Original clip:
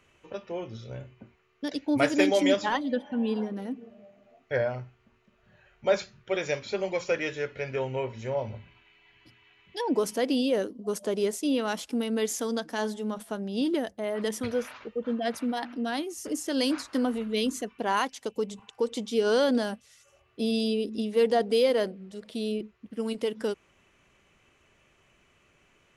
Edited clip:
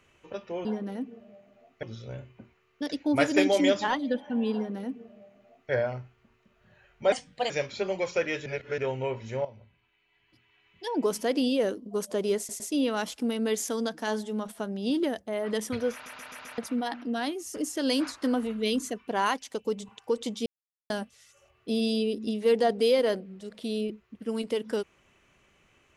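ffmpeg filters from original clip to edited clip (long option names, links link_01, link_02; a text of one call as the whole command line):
ffmpeg -i in.wav -filter_complex "[0:a]asplit=17[link_01][link_02][link_03][link_04][link_05][link_06][link_07][link_08][link_09][link_10][link_11][link_12][link_13][link_14][link_15][link_16][link_17];[link_01]atrim=end=0.652[link_18];[link_02]atrim=start=3.348:end=4.532[link_19];[link_03]atrim=start=0.648:end=5.944[link_20];[link_04]atrim=start=5.94:end=6.43,asetpts=PTS-STARTPTS,asetrate=56889,aresample=44100,atrim=end_sample=16751,asetpts=PTS-STARTPTS[link_21];[link_05]atrim=start=6.426:end=7.392[link_22];[link_06]atrim=start=7.388:end=7.712,asetpts=PTS-STARTPTS,areverse[link_23];[link_07]atrim=start=7.708:end=8.38,asetpts=PTS-STARTPTS,afade=type=out:start_time=0.668:duration=0.004:curve=hsin:silence=0.199526[link_24];[link_08]atrim=start=8.38:end=11.422,asetpts=PTS-STARTPTS,afade=type=in:duration=1.69:curve=qua:silence=0.199526[link_25];[link_09]atrim=start=11.308:end=11.422[link_26];[link_10]atrim=start=11.308:end=14.772[link_27];[link_11]atrim=start=14.638:end=14.772[link_28];[link_12]atrim=start=14.638:end=14.772[link_29];[link_13]atrim=start=14.638:end=14.772[link_30];[link_14]atrim=start=14.638:end=14.772[link_31];[link_15]atrim=start=15.288:end=19.17,asetpts=PTS-STARTPTS,afade=type=out:start_time=3.878:duration=0.004:curve=hsin[link_32];[link_16]atrim=start=19.17:end=19.61,asetpts=PTS-STARTPTS,volume=0[link_33];[link_17]atrim=start=19.61,asetpts=PTS-STARTPTS,afade=type=in:duration=0.004:curve=hsin[link_34];[link_18][link_19]acrossfade=duration=0.004:curve1=hsin:curve2=hsin[link_35];[link_35][link_20]acrossfade=duration=0.004:curve1=hsin:curve2=hsin[link_36];[link_36][link_21]acrossfade=duration=0.004:curve1=hsin:curve2=hsin[link_37];[link_37][link_22]acrossfade=duration=0.004:curve1=hsin:curve2=hsin[link_38];[link_38][link_23]acrossfade=duration=0.004:curve1=hsin:curve2=hsin[link_39];[link_24][link_25]concat=n=2:v=0:a=1[link_40];[link_39][link_40]acrossfade=duration=0.004:curve1=hsin:curve2=hsin[link_41];[link_41][link_26]acrossfade=duration=0.004:curve1=hsin:curve2=hsin[link_42];[link_42][link_27]acrossfade=duration=0.004:curve1=hsin:curve2=hsin[link_43];[link_43][link_28]acrossfade=duration=0.004:curve1=hsin:curve2=hsin[link_44];[link_44][link_29]acrossfade=duration=0.004:curve1=hsin:curve2=hsin[link_45];[link_45][link_30]acrossfade=duration=0.004:curve1=hsin:curve2=hsin[link_46];[link_46][link_31]acrossfade=duration=0.004:curve1=hsin:curve2=hsin[link_47];[link_32][link_33][link_34]concat=n=3:v=0:a=1[link_48];[link_47][link_48]acrossfade=duration=0.004:curve1=hsin:curve2=hsin" out.wav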